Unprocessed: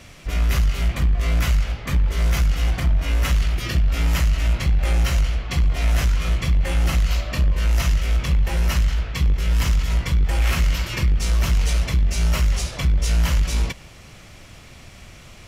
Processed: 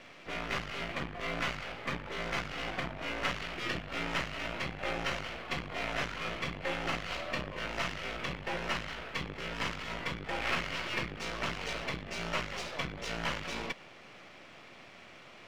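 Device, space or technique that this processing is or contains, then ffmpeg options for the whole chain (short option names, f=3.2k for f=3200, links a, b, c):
crystal radio: -af "highpass=290,lowpass=3.1k,aeval=exprs='if(lt(val(0),0),0.447*val(0),val(0))':c=same,volume=-1dB"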